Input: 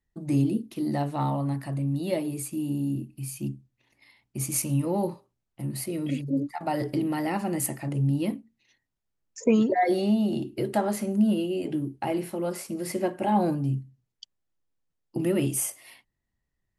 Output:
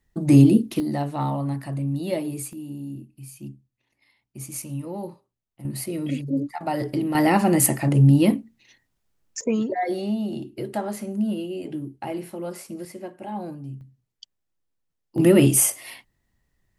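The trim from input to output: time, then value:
+10.5 dB
from 0.80 s +1.5 dB
from 2.53 s -6 dB
from 5.65 s +2 dB
from 7.15 s +10 dB
from 9.41 s -2.5 dB
from 12.85 s -9 dB
from 13.81 s +0.5 dB
from 15.18 s +10 dB

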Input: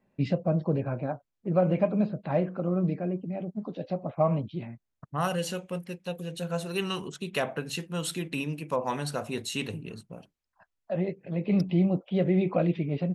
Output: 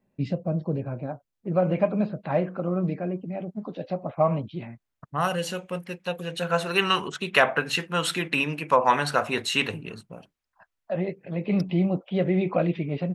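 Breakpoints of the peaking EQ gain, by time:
peaking EQ 1.5 kHz 2.8 oct
0.96 s -4.5 dB
1.83 s +5 dB
5.55 s +5 dB
6.51 s +15 dB
9.60 s +15 dB
10.09 s +5 dB

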